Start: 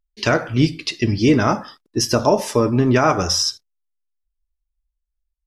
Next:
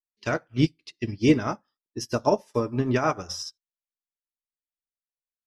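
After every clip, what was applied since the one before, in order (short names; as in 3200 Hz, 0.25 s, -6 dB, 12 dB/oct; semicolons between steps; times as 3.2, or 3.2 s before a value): upward expander 2.5:1, over -34 dBFS; gain -2 dB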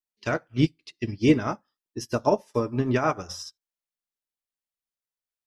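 dynamic EQ 5300 Hz, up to -4 dB, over -45 dBFS, Q 2.2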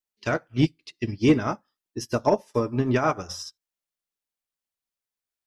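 soft clip -8.5 dBFS, distortion -23 dB; gain +1.5 dB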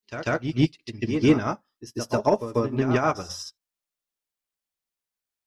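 reverse echo 0.143 s -9 dB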